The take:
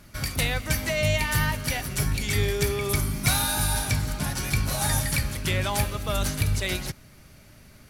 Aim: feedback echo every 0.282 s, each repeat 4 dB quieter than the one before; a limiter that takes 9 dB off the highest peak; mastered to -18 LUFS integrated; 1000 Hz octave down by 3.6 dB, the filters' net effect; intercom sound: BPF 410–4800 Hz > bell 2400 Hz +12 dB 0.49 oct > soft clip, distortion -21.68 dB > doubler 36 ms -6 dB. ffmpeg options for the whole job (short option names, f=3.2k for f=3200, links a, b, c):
-filter_complex "[0:a]equalizer=f=1k:t=o:g=-5,alimiter=limit=-16.5dB:level=0:latency=1,highpass=410,lowpass=4.8k,equalizer=f=2.4k:t=o:w=0.49:g=12,aecho=1:1:282|564|846|1128|1410|1692|1974|2256|2538:0.631|0.398|0.25|0.158|0.0994|0.0626|0.0394|0.0249|0.0157,asoftclip=threshold=-14.5dB,asplit=2[a][b];[b]adelay=36,volume=-6dB[c];[a][c]amix=inputs=2:normalize=0,volume=6dB"